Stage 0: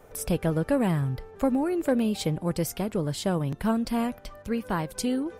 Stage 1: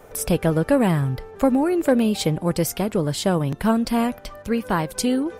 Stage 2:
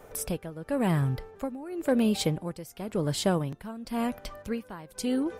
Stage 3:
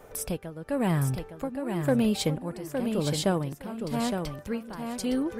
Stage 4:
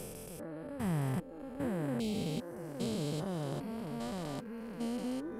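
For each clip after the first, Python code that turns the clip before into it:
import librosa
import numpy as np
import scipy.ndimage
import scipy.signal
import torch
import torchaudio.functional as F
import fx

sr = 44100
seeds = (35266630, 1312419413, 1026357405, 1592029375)

y1 = fx.low_shelf(x, sr, hz=180.0, db=-3.5)
y1 = y1 * 10.0 ** (7.0 / 20.0)
y2 = y1 * (1.0 - 0.86 / 2.0 + 0.86 / 2.0 * np.cos(2.0 * np.pi * 0.94 * (np.arange(len(y1)) / sr)))
y2 = y2 * 10.0 ** (-4.0 / 20.0)
y3 = fx.echo_feedback(y2, sr, ms=863, feedback_pct=16, wet_db=-6.0)
y4 = fx.spec_steps(y3, sr, hold_ms=400)
y4 = fx.dereverb_blind(y4, sr, rt60_s=0.66)
y4 = y4 * 10.0 ** (-3.0 / 20.0)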